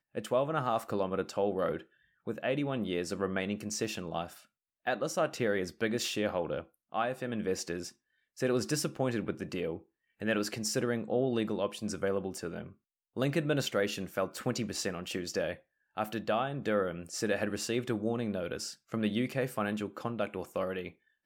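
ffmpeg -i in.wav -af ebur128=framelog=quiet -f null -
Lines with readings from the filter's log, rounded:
Integrated loudness:
  I:         -33.7 LUFS
  Threshold: -44.0 LUFS
Loudness range:
  LRA:         1.4 LU
  Threshold: -54.1 LUFS
  LRA low:   -34.7 LUFS
  LRA high:  -33.3 LUFS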